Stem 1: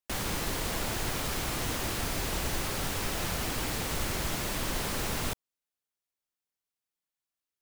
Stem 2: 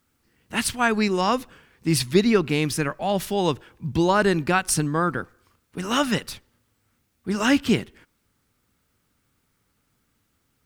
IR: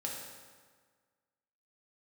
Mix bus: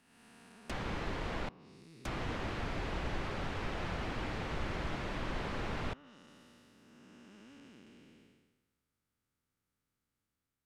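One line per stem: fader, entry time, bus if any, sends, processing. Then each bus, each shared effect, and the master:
-4.0 dB, 0.60 s, muted 1.49–2.05 s, no send, none
-16.0 dB, 0.00 s, no send, spectral blur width 724 ms; compression 3:1, threshold -41 dBFS, peak gain reduction 14 dB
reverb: none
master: low-pass that closes with the level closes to 2.6 kHz, closed at -37 dBFS

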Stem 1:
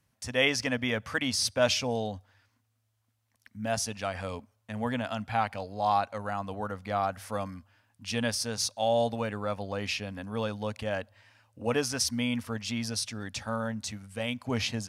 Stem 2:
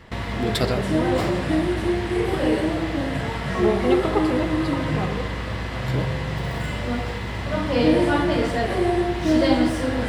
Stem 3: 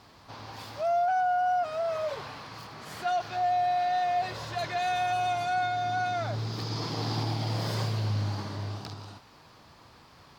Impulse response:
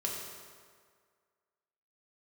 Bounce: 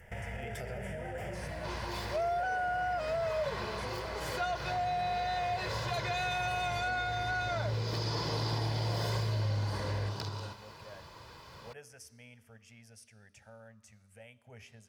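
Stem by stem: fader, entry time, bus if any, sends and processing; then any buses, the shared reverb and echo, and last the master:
-19.0 dB, 0.00 s, bus A, send -20.5 dB, upward compressor, threshold -30 dBFS
-2.0 dB, 0.00 s, bus A, no send, compression, threshold -23 dBFS, peak gain reduction 10 dB; flange 0.18 Hz, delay 8.5 ms, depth 7.5 ms, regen -77%
+2.0 dB, 1.35 s, no bus, no send, comb 2 ms, depth 51%
bus A: 0.0 dB, static phaser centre 1.1 kHz, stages 6; peak limiter -31.5 dBFS, peak gain reduction 6.5 dB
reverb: on, RT60 1.9 s, pre-delay 3 ms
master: compression 2.5:1, threshold -32 dBFS, peak gain reduction 7 dB

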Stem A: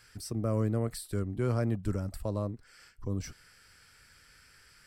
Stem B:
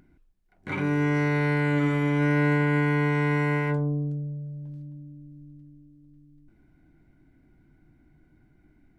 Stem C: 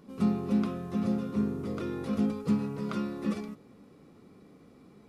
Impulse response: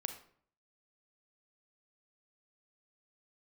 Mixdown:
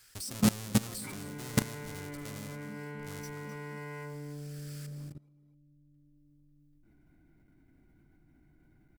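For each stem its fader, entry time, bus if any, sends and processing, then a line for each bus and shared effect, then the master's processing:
-3.0 dB, 0.00 s, no send, echo send -12 dB, square wave that keeps the level; peaking EQ 7.6 kHz +13 dB 2.8 oct
-5.5 dB, 0.35 s, send -4.5 dB, echo send -9.5 dB, none
+2.5 dB, 0.20 s, send -8 dB, echo send -10 dB, reverb removal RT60 1.1 s; auto duck -14 dB, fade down 1.85 s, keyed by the first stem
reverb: on, RT60 0.55 s, pre-delay 32 ms
echo: delay 257 ms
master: level held to a coarse grid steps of 21 dB; treble shelf 10 kHz +9.5 dB

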